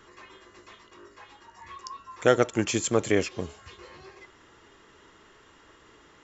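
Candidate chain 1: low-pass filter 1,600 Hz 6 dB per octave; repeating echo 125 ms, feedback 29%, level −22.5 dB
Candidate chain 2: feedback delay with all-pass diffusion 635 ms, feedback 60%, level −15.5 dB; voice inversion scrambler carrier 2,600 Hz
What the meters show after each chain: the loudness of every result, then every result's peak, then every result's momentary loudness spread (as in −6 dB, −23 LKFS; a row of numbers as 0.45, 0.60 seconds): −27.0, −24.5 LKFS; −8.5, −5.5 dBFS; 20, 22 LU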